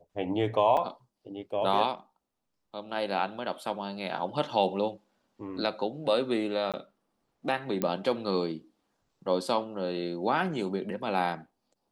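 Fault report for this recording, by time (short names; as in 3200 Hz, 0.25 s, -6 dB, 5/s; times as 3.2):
0.77 gap 3.4 ms
6.72–6.74 gap 17 ms
7.82 pop -15 dBFS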